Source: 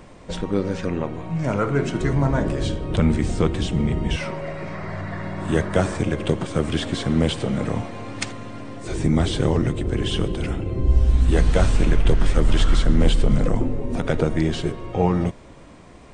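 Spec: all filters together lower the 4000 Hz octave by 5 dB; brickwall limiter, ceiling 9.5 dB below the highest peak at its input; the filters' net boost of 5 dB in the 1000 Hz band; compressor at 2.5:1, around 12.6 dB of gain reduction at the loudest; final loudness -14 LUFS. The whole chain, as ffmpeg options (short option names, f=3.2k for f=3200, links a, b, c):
-af "equalizer=f=1k:t=o:g=7,equalizer=f=4k:t=o:g=-7.5,acompressor=threshold=-31dB:ratio=2.5,volume=19.5dB,alimiter=limit=-2.5dB:level=0:latency=1"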